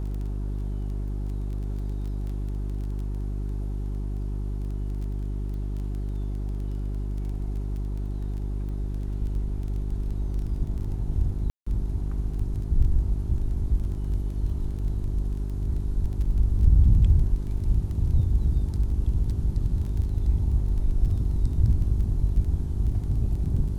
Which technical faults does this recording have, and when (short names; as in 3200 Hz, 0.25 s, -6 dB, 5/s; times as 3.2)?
crackle 13/s -34 dBFS
hum 50 Hz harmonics 8 -29 dBFS
11.5–11.66 gap 0.165 s